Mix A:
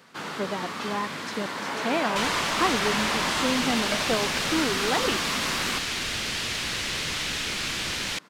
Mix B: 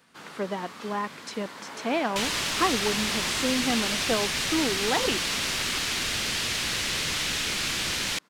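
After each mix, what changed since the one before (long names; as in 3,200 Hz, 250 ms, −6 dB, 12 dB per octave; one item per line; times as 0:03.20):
first sound −10.0 dB
master: add high-shelf EQ 6,500 Hz +5.5 dB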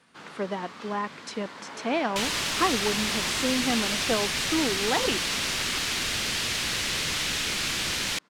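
first sound: add high-frequency loss of the air 53 metres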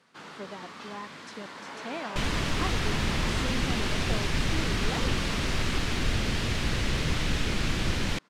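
speech −10.5 dB
second sound: add spectral tilt −3.5 dB per octave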